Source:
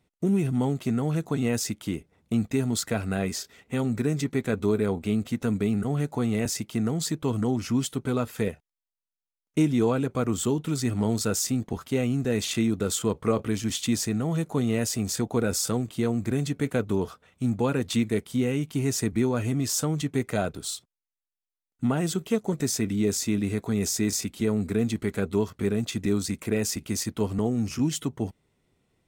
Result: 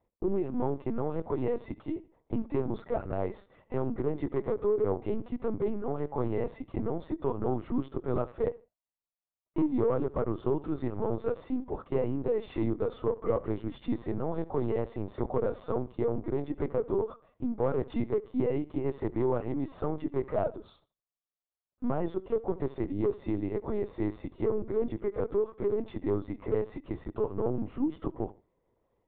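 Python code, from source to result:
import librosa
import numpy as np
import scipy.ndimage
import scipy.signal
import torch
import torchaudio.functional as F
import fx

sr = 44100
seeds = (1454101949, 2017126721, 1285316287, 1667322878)

y = scipy.signal.sosfilt(scipy.signal.butter(2, 350.0, 'highpass', fs=sr, output='sos'), x)
y = np.clip(10.0 ** (25.0 / 20.0) * y, -1.0, 1.0) / 10.0 ** (25.0 / 20.0)
y = scipy.signal.savgol_filter(y, 65, 4, mode='constant')
y = fx.echo_feedback(y, sr, ms=75, feedback_pct=25, wet_db=-19)
y = fx.lpc_vocoder(y, sr, seeds[0], excitation='pitch_kept', order=10)
y = y * librosa.db_to_amplitude(2.5)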